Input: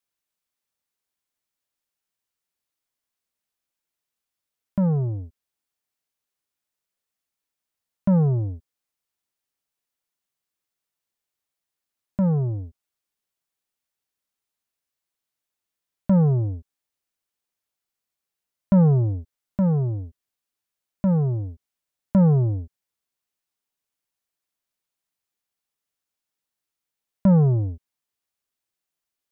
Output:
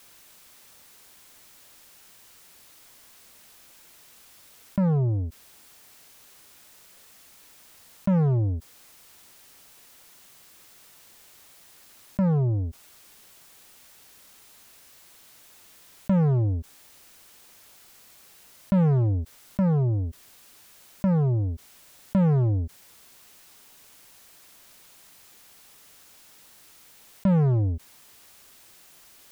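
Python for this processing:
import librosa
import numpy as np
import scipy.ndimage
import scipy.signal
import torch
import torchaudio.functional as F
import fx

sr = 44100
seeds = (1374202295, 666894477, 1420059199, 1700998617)

p1 = np.clip(x, -10.0 ** (-23.5 / 20.0), 10.0 ** (-23.5 / 20.0))
p2 = x + F.gain(torch.from_numpy(p1), -4.0).numpy()
p3 = fx.env_flatten(p2, sr, amount_pct=50)
y = F.gain(torch.from_numpy(p3), -6.5).numpy()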